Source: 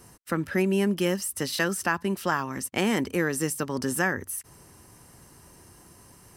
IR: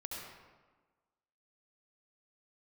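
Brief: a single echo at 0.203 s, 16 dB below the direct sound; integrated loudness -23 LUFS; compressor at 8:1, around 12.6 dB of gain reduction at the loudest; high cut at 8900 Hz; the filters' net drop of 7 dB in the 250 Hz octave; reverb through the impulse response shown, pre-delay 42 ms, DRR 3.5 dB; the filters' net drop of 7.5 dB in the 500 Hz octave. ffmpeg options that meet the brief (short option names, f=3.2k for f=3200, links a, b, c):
-filter_complex "[0:a]lowpass=8.9k,equalizer=f=250:t=o:g=-8.5,equalizer=f=500:t=o:g=-6.5,acompressor=threshold=-35dB:ratio=8,aecho=1:1:203:0.158,asplit=2[a][b];[1:a]atrim=start_sample=2205,adelay=42[c];[b][c]afir=irnorm=-1:irlink=0,volume=-3dB[d];[a][d]amix=inputs=2:normalize=0,volume=14.5dB"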